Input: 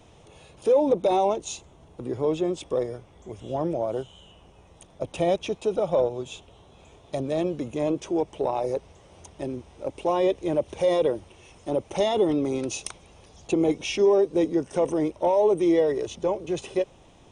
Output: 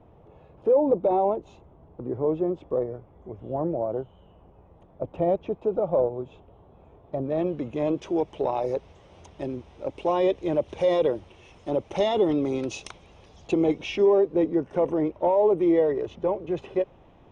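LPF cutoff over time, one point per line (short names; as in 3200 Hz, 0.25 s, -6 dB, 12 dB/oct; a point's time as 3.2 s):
7.16 s 1100 Hz
7.46 s 2300 Hz
8.16 s 4400 Hz
13.53 s 4400 Hz
14.32 s 2000 Hz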